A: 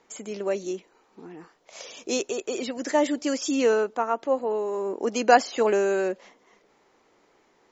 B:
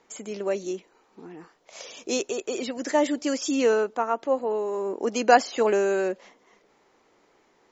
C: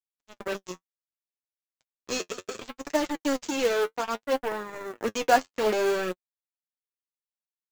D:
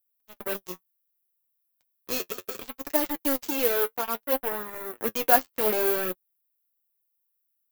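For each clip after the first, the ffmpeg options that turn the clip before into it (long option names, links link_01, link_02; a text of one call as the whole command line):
ffmpeg -i in.wav -af anull out.wav
ffmpeg -i in.wav -af "aresample=16000,acrusher=bits=3:mix=0:aa=0.5,aresample=44100,flanger=delay=5.4:depth=6.3:regen=36:speed=0.65:shape=triangular,acrusher=bits=5:mode=log:mix=0:aa=0.000001" out.wav
ffmpeg -i in.wav -af "aexciter=amount=15.7:drive=2.6:freq=9900,volume=-1.5dB" out.wav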